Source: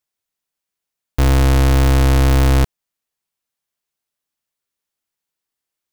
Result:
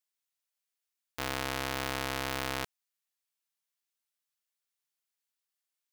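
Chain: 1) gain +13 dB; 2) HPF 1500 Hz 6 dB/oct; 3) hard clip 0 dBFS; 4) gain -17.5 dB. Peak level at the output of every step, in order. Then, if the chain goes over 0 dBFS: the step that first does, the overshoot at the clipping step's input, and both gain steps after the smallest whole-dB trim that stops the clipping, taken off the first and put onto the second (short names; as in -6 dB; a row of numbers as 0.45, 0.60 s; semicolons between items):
+1.5, +6.5, 0.0, -17.5 dBFS; step 1, 6.5 dB; step 1 +6 dB, step 4 -10.5 dB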